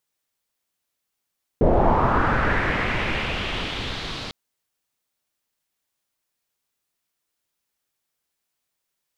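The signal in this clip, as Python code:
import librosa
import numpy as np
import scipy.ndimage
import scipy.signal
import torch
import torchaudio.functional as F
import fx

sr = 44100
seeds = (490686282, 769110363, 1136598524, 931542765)

y = fx.riser_noise(sr, seeds[0], length_s=2.7, colour='pink', kind='lowpass', start_hz=480.0, end_hz=4100.0, q=2.6, swell_db=-17, law='linear')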